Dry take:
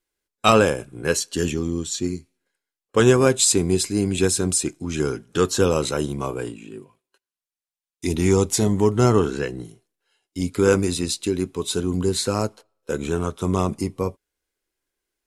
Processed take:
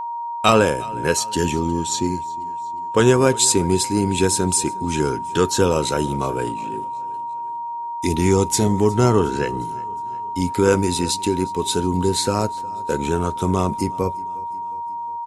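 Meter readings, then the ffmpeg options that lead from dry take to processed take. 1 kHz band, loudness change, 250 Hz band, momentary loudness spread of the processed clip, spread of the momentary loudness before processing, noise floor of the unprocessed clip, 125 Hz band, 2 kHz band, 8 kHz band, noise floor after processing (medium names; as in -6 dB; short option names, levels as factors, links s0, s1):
+8.5 dB, +1.0 dB, +1.5 dB, 12 LU, 12 LU, under -85 dBFS, +1.5 dB, +1.5 dB, +1.5 dB, -29 dBFS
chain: -filter_complex "[0:a]asplit=2[s0][s1];[s1]acompressor=threshold=0.0631:ratio=6,volume=0.794[s2];[s0][s2]amix=inputs=2:normalize=0,aeval=exprs='val(0)+0.0631*sin(2*PI*940*n/s)':c=same,aecho=1:1:360|720|1080|1440:0.0794|0.0429|0.0232|0.0125,volume=0.891"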